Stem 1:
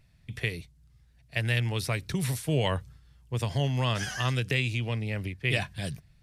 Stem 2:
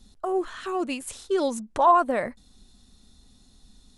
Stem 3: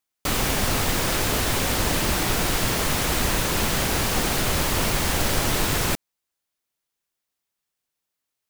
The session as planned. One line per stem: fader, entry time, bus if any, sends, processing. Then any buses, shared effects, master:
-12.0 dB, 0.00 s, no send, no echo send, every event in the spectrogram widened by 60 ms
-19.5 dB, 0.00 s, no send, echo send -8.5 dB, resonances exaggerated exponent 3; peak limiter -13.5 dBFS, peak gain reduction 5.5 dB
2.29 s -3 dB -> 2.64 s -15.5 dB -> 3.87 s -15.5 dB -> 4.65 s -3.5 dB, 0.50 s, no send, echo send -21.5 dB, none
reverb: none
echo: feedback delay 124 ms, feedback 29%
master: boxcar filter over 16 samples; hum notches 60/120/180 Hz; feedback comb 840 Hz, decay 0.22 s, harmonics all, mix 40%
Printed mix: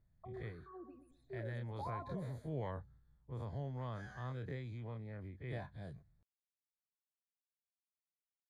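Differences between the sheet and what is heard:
stem 3: muted; master: missing hum notches 60/120/180 Hz

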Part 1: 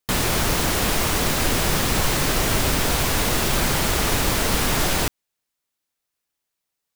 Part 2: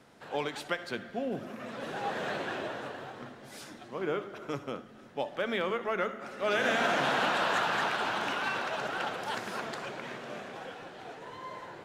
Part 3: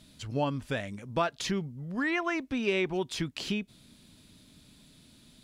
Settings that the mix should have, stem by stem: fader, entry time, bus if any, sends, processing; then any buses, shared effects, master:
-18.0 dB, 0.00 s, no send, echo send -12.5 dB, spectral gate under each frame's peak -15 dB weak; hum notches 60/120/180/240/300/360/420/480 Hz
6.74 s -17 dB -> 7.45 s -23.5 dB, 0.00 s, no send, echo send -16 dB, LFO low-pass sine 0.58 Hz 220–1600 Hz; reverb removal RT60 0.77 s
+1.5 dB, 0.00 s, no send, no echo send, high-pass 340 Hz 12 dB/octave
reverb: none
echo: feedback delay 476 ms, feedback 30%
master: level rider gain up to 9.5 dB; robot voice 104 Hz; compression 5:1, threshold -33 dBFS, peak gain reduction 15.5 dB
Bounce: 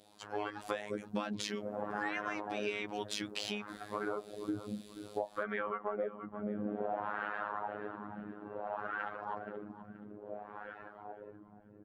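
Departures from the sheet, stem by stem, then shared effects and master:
stem 1: muted; stem 2 -17.0 dB -> -6.5 dB; stem 3 +1.5 dB -> -6.5 dB

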